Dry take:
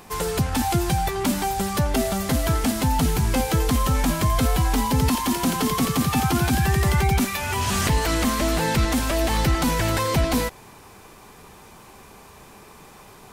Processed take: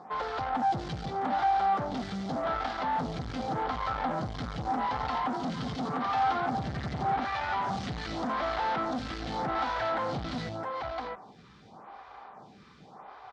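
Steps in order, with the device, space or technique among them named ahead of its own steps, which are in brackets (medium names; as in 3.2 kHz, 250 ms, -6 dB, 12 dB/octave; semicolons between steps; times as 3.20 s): delay 663 ms -8.5 dB; vibe pedal into a guitar amplifier (lamp-driven phase shifter 0.85 Hz; valve stage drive 30 dB, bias 0.6; cabinet simulation 75–4400 Hz, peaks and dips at 82 Hz -8 dB, 380 Hz -5 dB, 760 Hz +10 dB, 1.3 kHz +6 dB, 2.6 kHz -7 dB)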